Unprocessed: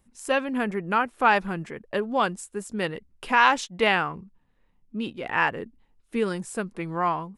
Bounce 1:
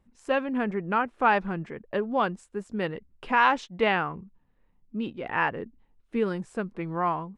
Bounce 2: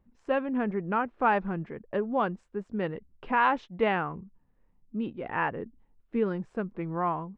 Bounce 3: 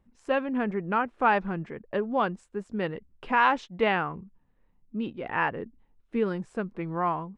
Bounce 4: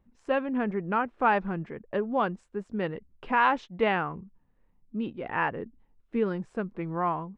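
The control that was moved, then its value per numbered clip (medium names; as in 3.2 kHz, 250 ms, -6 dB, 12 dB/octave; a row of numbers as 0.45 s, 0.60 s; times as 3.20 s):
tape spacing loss, at 10 kHz: 20 dB, 46 dB, 28 dB, 37 dB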